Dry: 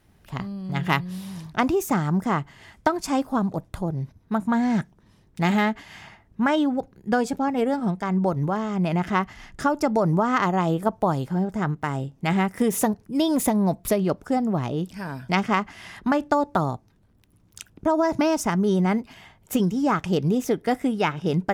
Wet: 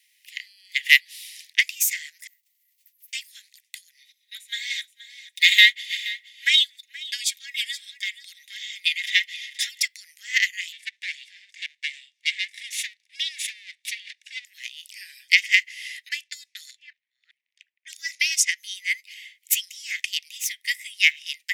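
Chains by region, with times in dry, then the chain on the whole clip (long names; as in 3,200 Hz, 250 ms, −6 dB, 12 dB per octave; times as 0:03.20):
0:02.27–0:03.13: inverse Chebyshev band-stop filter 130–8,500 Hz + noise that follows the level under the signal 22 dB + multiband upward and downward compressor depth 40%
0:03.99–0:09.85: parametric band 3,600 Hz +12.5 dB 0.23 octaves + comb filter 3.7 ms, depth 51% + single-tap delay 475 ms −12.5 dB
0:10.72–0:14.45: lower of the sound and its delayed copy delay 1.8 ms + high-frequency loss of the air 80 metres + hollow resonant body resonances 1,100/3,600 Hz, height 11 dB, ringing for 30 ms
0:16.09–0:18.58: delay that plays each chunk backwards 420 ms, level −12 dB + low-pass that shuts in the quiet parts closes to 880 Hz, open at −17.5 dBFS
whole clip: Butterworth high-pass 1,900 Hz 96 dB per octave; boost into a limiter +16.5 dB; expander for the loud parts 1.5 to 1, over −28 dBFS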